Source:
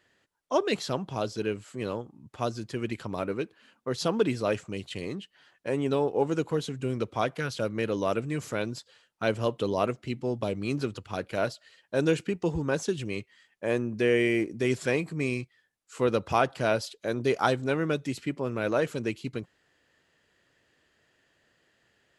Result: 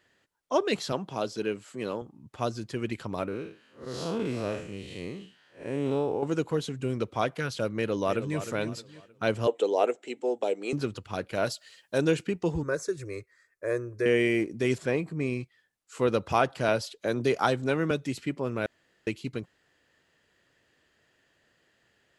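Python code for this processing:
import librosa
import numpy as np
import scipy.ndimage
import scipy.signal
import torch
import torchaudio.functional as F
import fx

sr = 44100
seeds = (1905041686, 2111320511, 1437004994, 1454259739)

y = fx.highpass(x, sr, hz=160.0, slope=12, at=(0.92, 2.02))
y = fx.spec_blur(y, sr, span_ms=153.0, at=(3.28, 6.23))
y = fx.echo_throw(y, sr, start_s=7.76, length_s=0.62, ms=310, feedback_pct=35, wet_db=-10.5)
y = fx.cabinet(y, sr, low_hz=310.0, low_slope=24, high_hz=9400.0, hz=(460.0, 790.0, 1100.0, 4800.0, 7600.0), db=(7, 7, -7, -8, 9), at=(9.47, 10.73))
y = fx.high_shelf(y, sr, hz=4100.0, db=11.5, at=(11.46, 11.98))
y = fx.fixed_phaser(y, sr, hz=820.0, stages=6, at=(12.63, 14.06))
y = fx.high_shelf(y, sr, hz=2100.0, db=-8.5, at=(14.78, 15.41))
y = fx.band_squash(y, sr, depth_pct=40, at=(16.68, 17.91))
y = fx.edit(y, sr, fx.room_tone_fill(start_s=18.66, length_s=0.41), tone=tone)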